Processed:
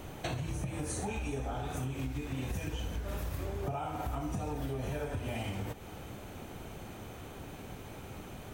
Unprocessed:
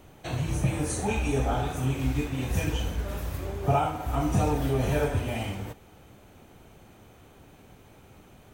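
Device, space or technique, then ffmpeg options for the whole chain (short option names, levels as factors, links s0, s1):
serial compression, leveller first: -af "acompressor=threshold=0.0316:ratio=2.5,acompressor=threshold=0.00891:ratio=6,volume=2.24"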